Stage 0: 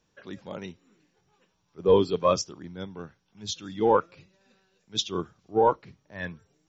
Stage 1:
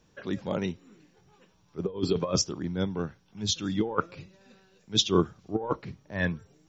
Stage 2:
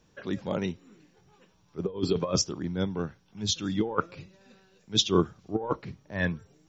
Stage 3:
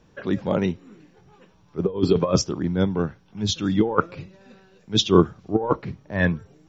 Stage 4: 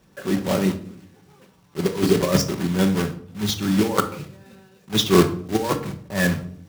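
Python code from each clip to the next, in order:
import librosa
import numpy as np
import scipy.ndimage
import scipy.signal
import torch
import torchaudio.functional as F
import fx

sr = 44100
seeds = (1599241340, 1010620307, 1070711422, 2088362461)

y1 = fx.low_shelf(x, sr, hz=470.0, db=5.0)
y1 = fx.over_compress(y1, sr, threshold_db=-24.0, ratio=-0.5)
y2 = y1
y3 = fx.high_shelf(y2, sr, hz=3700.0, db=-10.5)
y3 = y3 * librosa.db_to_amplitude(8.0)
y4 = fx.block_float(y3, sr, bits=3)
y4 = scipy.signal.sosfilt(scipy.signal.butter(2, 48.0, 'highpass', fs=sr, output='sos'), y4)
y4 = fx.room_shoebox(y4, sr, seeds[0], volume_m3=740.0, walls='furnished', distance_m=1.1)
y4 = y4 * librosa.db_to_amplitude(-1.0)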